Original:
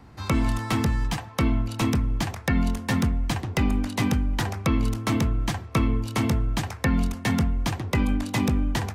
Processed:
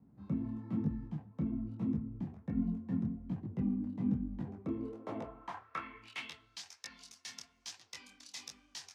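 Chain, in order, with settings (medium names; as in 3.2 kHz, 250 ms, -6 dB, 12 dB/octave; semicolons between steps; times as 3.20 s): band-pass sweep 200 Hz -> 5.4 kHz, 4.39–6.65 s; detune thickener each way 40 cents; trim -2 dB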